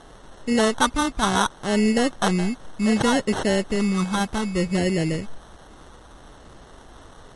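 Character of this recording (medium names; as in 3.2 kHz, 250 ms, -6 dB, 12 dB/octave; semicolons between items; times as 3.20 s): a quantiser's noise floor 8-bit, dither triangular; phasing stages 8, 0.66 Hz, lowest notch 510–1100 Hz; aliases and images of a low sample rate 2.4 kHz, jitter 0%; MP3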